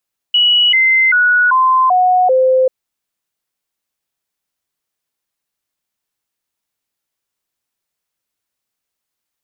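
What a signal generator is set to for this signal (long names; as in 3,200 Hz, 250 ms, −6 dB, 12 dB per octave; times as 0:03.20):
stepped sweep 2,930 Hz down, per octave 2, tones 6, 0.39 s, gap 0.00 s −8 dBFS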